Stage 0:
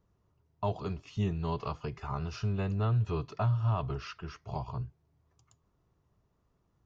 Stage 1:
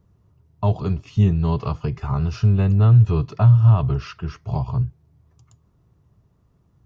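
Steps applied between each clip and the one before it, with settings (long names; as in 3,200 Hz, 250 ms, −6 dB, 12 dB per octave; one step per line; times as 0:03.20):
parametric band 110 Hz +10 dB 2.4 octaves
level +6 dB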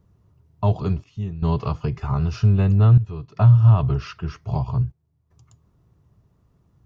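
gate pattern "xxxxxxxx...xxxx" 116 BPM −12 dB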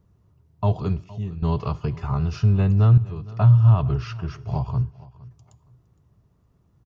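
repeating echo 463 ms, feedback 26%, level −20.5 dB
on a send at −22 dB: convolution reverb RT60 0.65 s, pre-delay 43 ms
on the sum: level −1.5 dB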